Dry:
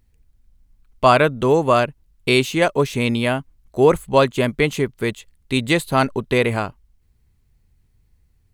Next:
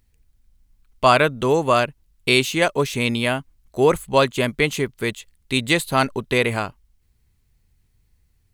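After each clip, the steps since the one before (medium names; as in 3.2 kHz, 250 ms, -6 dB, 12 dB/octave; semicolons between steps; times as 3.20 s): tilt shelf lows -3 dB, about 1.5 kHz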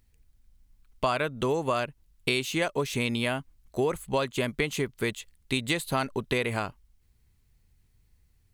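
compression 5:1, threshold -22 dBFS, peak gain reduction 11.5 dB; trim -2 dB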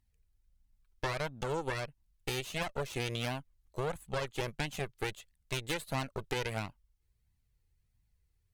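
Chebyshev shaper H 8 -12 dB, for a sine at -8.5 dBFS; flange 1.5 Hz, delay 1 ms, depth 1.5 ms, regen -23%; trim -7.5 dB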